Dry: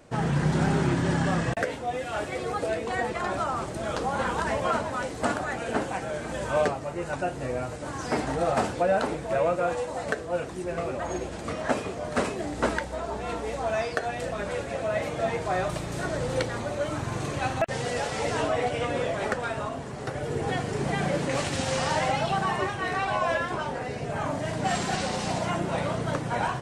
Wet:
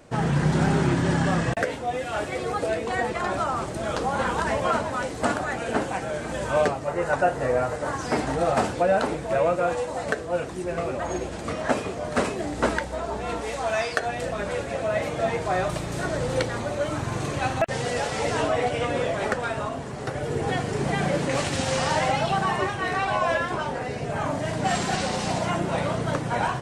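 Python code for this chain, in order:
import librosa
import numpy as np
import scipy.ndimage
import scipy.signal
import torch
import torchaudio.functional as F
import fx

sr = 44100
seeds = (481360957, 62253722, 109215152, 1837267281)

y = fx.spec_box(x, sr, start_s=6.88, length_s=1.08, low_hz=400.0, high_hz=2100.0, gain_db=6)
y = fx.tilt_shelf(y, sr, db=-4.0, hz=820.0, at=(13.41, 14.0))
y = y * librosa.db_to_amplitude(2.5)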